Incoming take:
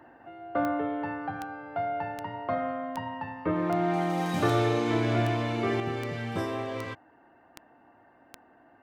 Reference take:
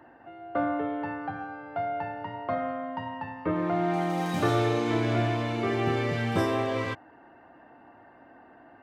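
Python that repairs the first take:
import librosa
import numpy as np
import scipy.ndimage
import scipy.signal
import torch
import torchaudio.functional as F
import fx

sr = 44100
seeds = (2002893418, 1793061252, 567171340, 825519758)

y = fx.fix_declick_ar(x, sr, threshold=10.0)
y = fx.fix_level(y, sr, at_s=5.8, step_db=5.5)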